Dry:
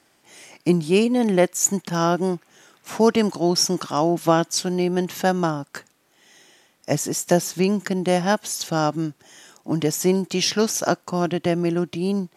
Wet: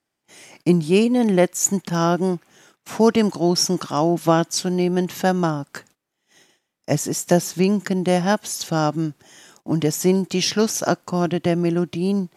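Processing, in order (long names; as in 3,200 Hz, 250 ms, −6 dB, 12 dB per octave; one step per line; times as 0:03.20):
noise gate −51 dBFS, range −19 dB
low-shelf EQ 200 Hz +5 dB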